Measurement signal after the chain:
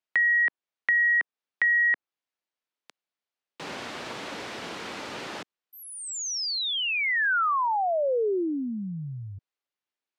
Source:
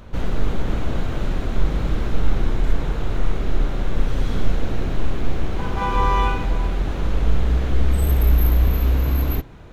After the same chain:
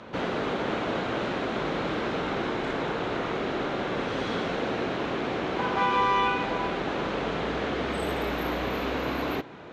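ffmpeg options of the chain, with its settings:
-filter_complex "[0:a]highpass=250,lowpass=4200,acrossover=split=390|1600[s0][s1][s2];[s0]acompressor=threshold=0.0141:ratio=4[s3];[s1]acompressor=threshold=0.0316:ratio=4[s4];[s2]acompressor=threshold=0.0224:ratio=4[s5];[s3][s4][s5]amix=inputs=3:normalize=0,volume=1.68"

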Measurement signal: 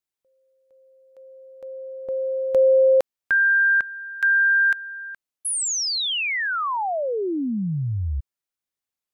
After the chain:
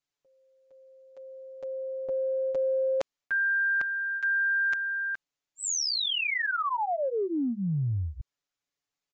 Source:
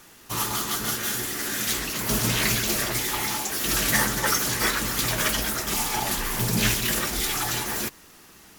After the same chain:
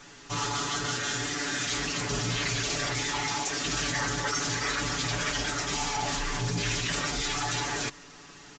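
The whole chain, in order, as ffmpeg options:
-af "aecho=1:1:7:0.97,aresample=16000,aresample=44100,areverse,acompressor=threshold=0.0447:ratio=5:attack=5.3:release=62:knee=6:detection=rms,areverse"

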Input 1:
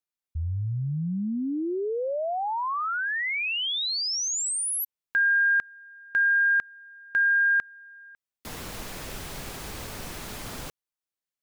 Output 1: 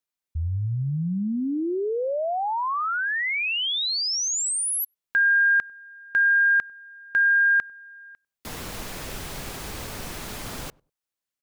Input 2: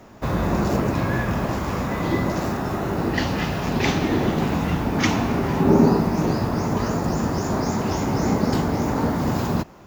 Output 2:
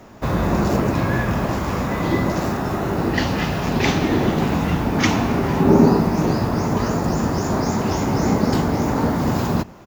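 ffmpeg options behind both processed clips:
-filter_complex "[0:a]asplit=2[s0][s1];[s1]adelay=98,lowpass=f=820:p=1,volume=0.0668,asplit=2[s2][s3];[s3]adelay=98,lowpass=f=820:p=1,volume=0.21[s4];[s0][s2][s4]amix=inputs=3:normalize=0,volume=1.33"

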